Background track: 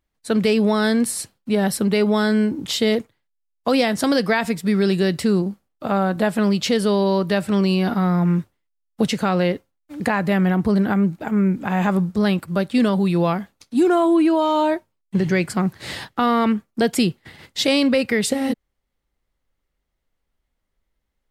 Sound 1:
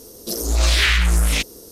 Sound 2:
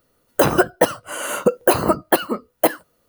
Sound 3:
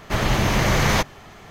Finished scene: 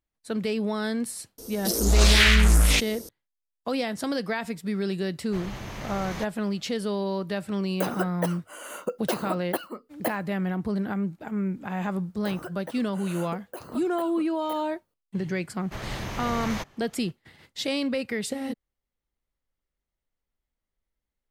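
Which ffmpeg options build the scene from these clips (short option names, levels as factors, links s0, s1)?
-filter_complex "[3:a]asplit=2[s0][s1];[2:a]asplit=2[s2][s3];[0:a]volume=0.316[s4];[s2]highpass=190[s5];[s3]alimiter=limit=0.266:level=0:latency=1:release=405[s6];[1:a]atrim=end=1.71,asetpts=PTS-STARTPTS,volume=0.891,afade=t=in:d=0.004:c=hsin,afade=t=out:st=1.706:d=0.004:c=hsin,adelay=1380[s7];[s0]atrim=end=1.5,asetpts=PTS-STARTPTS,volume=0.133,afade=t=in:d=0.004:c=hsin,afade=t=out:st=1.496:d=0.004:c=hsin,adelay=5220[s8];[s5]atrim=end=3.08,asetpts=PTS-STARTPTS,volume=0.211,afade=t=in:d=0.004:c=hsin,afade=t=out:st=3.076:d=0.004:c=hsin,adelay=7410[s9];[s6]atrim=end=3.08,asetpts=PTS-STARTPTS,volume=0.158,afade=t=in:d=0.004:c=hsin,afade=t=out:st=3.076:d=0.004:c=hsin,adelay=523026S[s10];[s1]atrim=end=1.5,asetpts=PTS-STARTPTS,volume=0.2,afade=t=in:d=0.004:c=hsin,afade=t=out:st=1.496:d=0.004:c=hsin,adelay=15610[s11];[s4][s7][s8][s9][s10][s11]amix=inputs=6:normalize=0"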